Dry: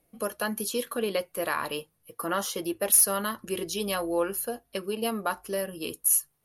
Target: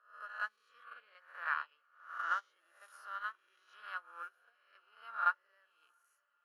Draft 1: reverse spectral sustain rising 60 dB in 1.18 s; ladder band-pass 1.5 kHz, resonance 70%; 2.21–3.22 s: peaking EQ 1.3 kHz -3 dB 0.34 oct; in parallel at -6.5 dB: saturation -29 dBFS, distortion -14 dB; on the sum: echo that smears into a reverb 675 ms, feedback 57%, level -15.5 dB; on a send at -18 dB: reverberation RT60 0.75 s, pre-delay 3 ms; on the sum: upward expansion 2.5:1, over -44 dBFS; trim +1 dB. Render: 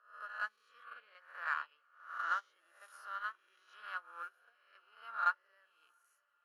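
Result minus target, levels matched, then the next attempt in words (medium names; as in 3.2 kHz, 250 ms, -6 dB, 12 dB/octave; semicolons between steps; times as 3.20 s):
saturation: distortion +16 dB
reverse spectral sustain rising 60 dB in 1.18 s; ladder band-pass 1.5 kHz, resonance 70%; 2.21–3.22 s: peaking EQ 1.3 kHz -3 dB 0.34 oct; in parallel at -6.5 dB: saturation -18 dBFS, distortion -30 dB; on the sum: echo that smears into a reverb 675 ms, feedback 57%, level -15.5 dB; on a send at -18 dB: reverberation RT60 0.75 s, pre-delay 3 ms; on the sum: upward expansion 2.5:1, over -44 dBFS; trim +1 dB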